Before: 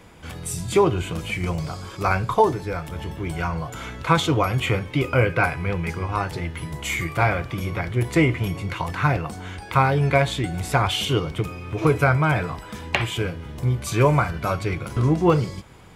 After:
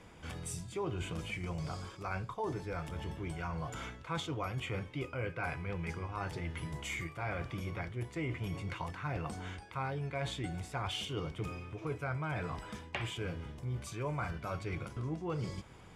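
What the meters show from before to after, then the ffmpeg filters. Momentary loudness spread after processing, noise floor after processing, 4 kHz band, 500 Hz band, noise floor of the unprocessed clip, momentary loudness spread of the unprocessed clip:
4 LU, −53 dBFS, −14.0 dB, −18.0 dB, −39 dBFS, 11 LU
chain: -af "lowpass=9800,bandreject=frequency=4100:width=16,areverse,acompressor=threshold=-28dB:ratio=5,areverse,volume=-7.5dB"

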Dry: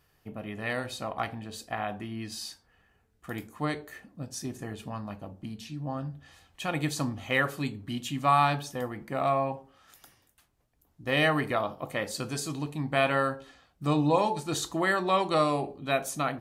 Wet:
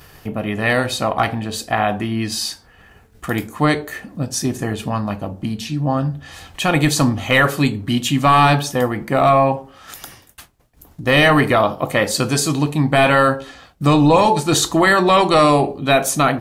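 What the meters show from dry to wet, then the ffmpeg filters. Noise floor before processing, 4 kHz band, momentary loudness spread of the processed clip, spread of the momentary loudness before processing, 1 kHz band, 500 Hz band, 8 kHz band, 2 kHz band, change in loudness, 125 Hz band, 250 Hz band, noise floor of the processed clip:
−69 dBFS, +14.0 dB, 13 LU, 16 LU, +12.5 dB, +13.0 dB, +15.5 dB, +13.0 dB, +13.0 dB, +14.5 dB, +14.0 dB, −50 dBFS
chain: -af "apsyclip=22.5dB,agate=range=-33dB:threshold=-36dB:ratio=3:detection=peak,acompressor=mode=upward:threshold=-20dB:ratio=2.5,volume=-7dB"

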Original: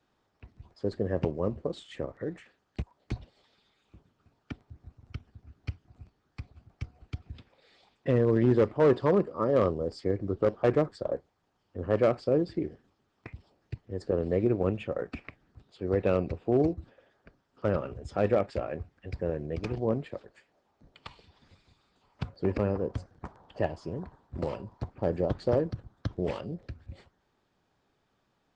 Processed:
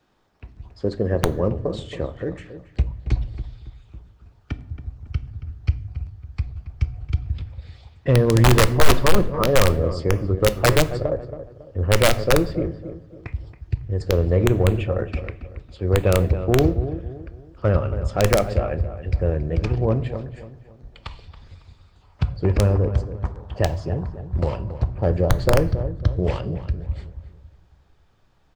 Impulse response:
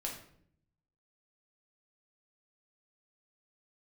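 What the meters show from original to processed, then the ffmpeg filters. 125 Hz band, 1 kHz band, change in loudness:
+13.5 dB, +10.0 dB, +7.5 dB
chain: -filter_complex "[0:a]asplit=2[link_01][link_02];[link_02]adelay=276,lowpass=frequency=2000:poles=1,volume=-12dB,asplit=2[link_03][link_04];[link_04]adelay=276,lowpass=frequency=2000:poles=1,volume=0.36,asplit=2[link_05][link_06];[link_06]adelay=276,lowpass=frequency=2000:poles=1,volume=0.36,asplit=2[link_07][link_08];[link_08]adelay=276,lowpass=frequency=2000:poles=1,volume=0.36[link_09];[link_03][link_05][link_07][link_09]amix=inputs=4:normalize=0[link_10];[link_01][link_10]amix=inputs=2:normalize=0,aeval=exprs='(mod(5.62*val(0)+1,2)-1)/5.62':channel_layout=same,asplit=2[link_11][link_12];[1:a]atrim=start_sample=2205,lowshelf=frequency=200:gain=8[link_13];[link_12][link_13]afir=irnorm=-1:irlink=0,volume=-12dB[link_14];[link_11][link_14]amix=inputs=2:normalize=0,asubboost=boost=4.5:cutoff=96,acontrast=90,volume=-1dB"

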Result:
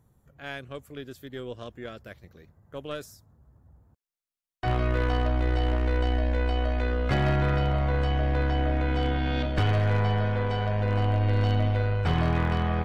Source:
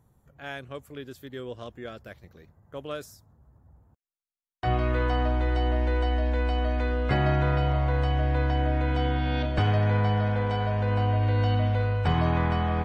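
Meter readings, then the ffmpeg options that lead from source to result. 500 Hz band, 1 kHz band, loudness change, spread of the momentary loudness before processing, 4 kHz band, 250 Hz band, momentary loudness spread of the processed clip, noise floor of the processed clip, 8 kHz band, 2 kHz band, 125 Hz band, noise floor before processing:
−0.5 dB, −2.0 dB, −0.5 dB, 16 LU, +0.5 dB, 0.0 dB, 16 LU, below −85 dBFS, can't be measured, 0.0 dB, −0.5 dB, below −85 dBFS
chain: -af "aeval=exprs='0.224*(cos(1*acos(clip(val(0)/0.224,-1,1)))-cos(1*PI/2))+0.0224*(cos(2*acos(clip(val(0)/0.224,-1,1)))-cos(2*PI/2))+0.0112*(cos(6*acos(clip(val(0)/0.224,-1,1)))-cos(6*PI/2))':channel_layout=same,aeval=exprs='0.168*(abs(mod(val(0)/0.168+3,4)-2)-1)':channel_layout=same,equalizer=frequency=860:width=1.9:gain=-3"

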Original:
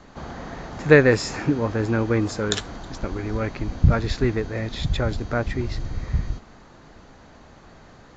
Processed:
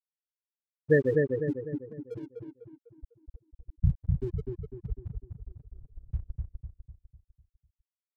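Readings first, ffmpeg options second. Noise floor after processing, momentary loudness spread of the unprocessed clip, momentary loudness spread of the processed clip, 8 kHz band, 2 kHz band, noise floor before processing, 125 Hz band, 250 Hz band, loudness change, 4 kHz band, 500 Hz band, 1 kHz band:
below −85 dBFS, 18 LU, 21 LU, can't be measured, −14.5 dB, −49 dBFS, −9.5 dB, −11.5 dB, −8.5 dB, below −35 dB, −8.0 dB, below −30 dB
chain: -filter_complex "[0:a]afftfilt=real='re*gte(hypot(re,im),0.794)':imag='im*gte(hypot(re,im),0.794)':win_size=1024:overlap=0.75,aeval=exprs='sgn(val(0))*max(abs(val(0))-0.00473,0)':channel_layout=same,asplit=2[link_01][link_02];[link_02]adelay=250,lowpass=frequency=1600:poles=1,volume=-3dB,asplit=2[link_03][link_04];[link_04]adelay=250,lowpass=frequency=1600:poles=1,volume=0.46,asplit=2[link_05][link_06];[link_06]adelay=250,lowpass=frequency=1600:poles=1,volume=0.46,asplit=2[link_07][link_08];[link_08]adelay=250,lowpass=frequency=1600:poles=1,volume=0.46,asplit=2[link_09][link_10];[link_10]adelay=250,lowpass=frequency=1600:poles=1,volume=0.46,asplit=2[link_11][link_12];[link_12]adelay=250,lowpass=frequency=1600:poles=1,volume=0.46[link_13];[link_01][link_03][link_05][link_07][link_09][link_11][link_13]amix=inputs=7:normalize=0,volume=-8dB"

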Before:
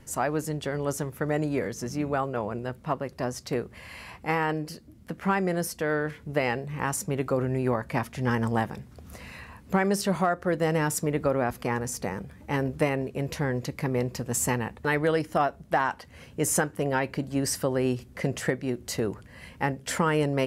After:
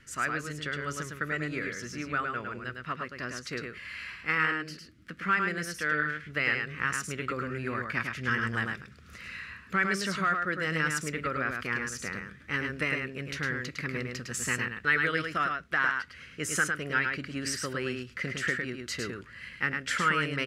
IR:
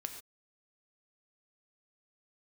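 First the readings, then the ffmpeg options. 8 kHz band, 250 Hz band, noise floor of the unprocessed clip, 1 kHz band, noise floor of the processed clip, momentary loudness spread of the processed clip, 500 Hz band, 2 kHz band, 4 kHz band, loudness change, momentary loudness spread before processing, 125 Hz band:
−5.0 dB, −7.5 dB, −51 dBFS, −3.0 dB, −52 dBFS, 10 LU, −10.5 dB, +5.5 dB, +1.5 dB, −2.5 dB, 9 LU, −7.5 dB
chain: -filter_complex "[0:a]firequalizer=gain_entry='entry(370,0);entry(840,-11);entry(1300,14);entry(12000,-5)':delay=0.05:min_phase=1,asplit=2[link_01][link_02];[link_02]aecho=0:1:106:0.596[link_03];[link_01][link_03]amix=inputs=2:normalize=0,volume=-9dB"

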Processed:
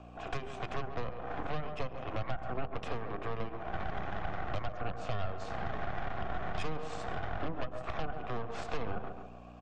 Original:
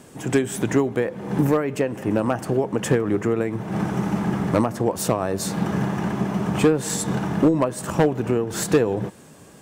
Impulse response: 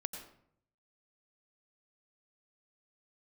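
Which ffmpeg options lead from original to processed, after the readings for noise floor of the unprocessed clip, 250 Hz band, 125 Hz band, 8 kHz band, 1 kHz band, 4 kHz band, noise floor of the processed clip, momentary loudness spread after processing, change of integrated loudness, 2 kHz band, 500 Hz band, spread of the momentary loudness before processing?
−47 dBFS, −23.5 dB, −16.0 dB, −30.0 dB, −9.0 dB, −12.5 dB, −48 dBFS, 2 LU, −17.0 dB, −10.5 dB, −18.0 dB, 5 LU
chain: -filter_complex "[0:a]asplit=3[link_01][link_02][link_03];[link_01]bandpass=frequency=730:width_type=q:width=8,volume=0dB[link_04];[link_02]bandpass=frequency=1090:width_type=q:width=8,volume=-6dB[link_05];[link_03]bandpass=frequency=2440:width_type=q:width=8,volume=-9dB[link_06];[link_04][link_05][link_06]amix=inputs=3:normalize=0,asplit=2[link_07][link_08];[link_08]lowshelf=frequency=380:gain=-7[link_09];[1:a]atrim=start_sample=2205,afade=type=out:start_time=0.23:duration=0.01,atrim=end_sample=10584,lowpass=6400[link_10];[link_09][link_10]afir=irnorm=-1:irlink=0,volume=-3.5dB[link_11];[link_07][link_11]amix=inputs=2:normalize=0,alimiter=limit=-22.5dB:level=0:latency=1:release=354,bandreject=frequency=50:width_type=h:width=6,bandreject=frequency=100:width_type=h:width=6,bandreject=frequency=150:width_type=h:width=6,bandreject=frequency=200:width_type=h:width=6,bandreject=frequency=250:width_type=h:width=6,bandreject=frequency=300:width_type=h:width=6,bandreject=frequency=350:width_type=h:width=6,bandreject=frequency=400:width_type=h:width=6,aeval=exprs='val(0)+0.00398*(sin(2*PI*60*n/s)+sin(2*PI*2*60*n/s)/2+sin(2*PI*3*60*n/s)/3+sin(2*PI*4*60*n/s)/4+sin(2*PI*5*60*n/s)/5)':channel_layout=same,lowpass=frequency=7600:width=0.5412,lowpass=frequency=7600:width=1.3066,lowshelf=frequency=120:gain=-9,aeval=exprs='0.0891*(cos(1*acos(clip(val(0)/0.0891,-1,1)))-cos(1*PI/2))+0.0251*(cos(6*acos(clip(val(0)/0.0891,-1,1)))-cos(6*PI/2))':channel_layout=same,asplit=2[link_12][link_13];[link_13]adelay=138,lowpass=frequency=1500:poles=1,volume=-11.5dB,asplit=2[link_14][link_15];[link_15]adelay=138,lowpass=frequency=1500:poles=1,volume=0.39,asplit=2[link_16][link_17];[link_17]adelay=138,lowpass=frequency=1500:poles=1,volume=0.39,asplit=2[link_18][link_19];[link_19]adelay=138,lowpass=frequency=1500:poles=1,volume=0.39[link_20];[link_12][link_14][link_16][link_18][link_20]amix=inputs=5:normalize=0,acrossover=split=190[link_21][link_22];[link_22]acompressor=threshold=-39dB:ratio=5[link_23];[link_21][link_23]amix=inputs=2:normalize=0,volume=2.5dB" -ar 48000 -c:a libmp3lame -b:a 48k

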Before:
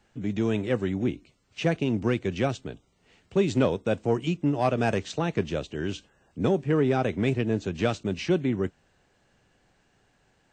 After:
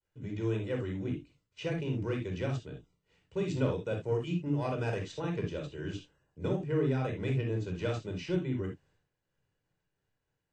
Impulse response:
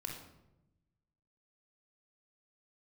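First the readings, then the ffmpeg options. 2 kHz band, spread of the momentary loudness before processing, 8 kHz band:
−8.5 dB, 9 LU, −10.0 dB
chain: -filter_complex "[0:a]agate=range=-33dB:threshold=-57dB:ratio=3:detection=peak[link_01];[1:a]atrim=start_sample=2205,afade=type=out:start_time=0.13:duration=0.01,atrim=end_sample=6174[link_02];[link_01][link_02]afir=irnorm=-1:irlink=0,volume=-7dB"

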